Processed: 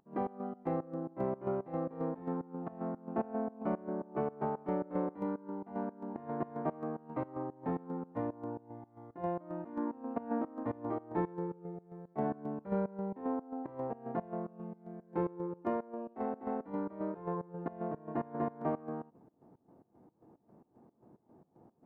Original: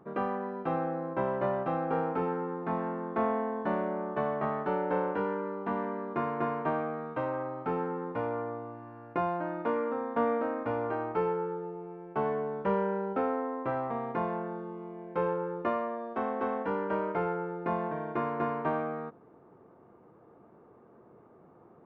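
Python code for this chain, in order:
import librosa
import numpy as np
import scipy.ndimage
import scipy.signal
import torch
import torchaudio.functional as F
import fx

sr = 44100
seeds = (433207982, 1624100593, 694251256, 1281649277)

y = fx.formant_shift(x, sr, semitones=-5)
y = fx.volume_shaper(y, sr, bpm=112, per_beat=2, depth_db=-19, release_ms=128.0, shape='slow start')
y = F.gain(torch.from_numpy(y), -3.0).numpy()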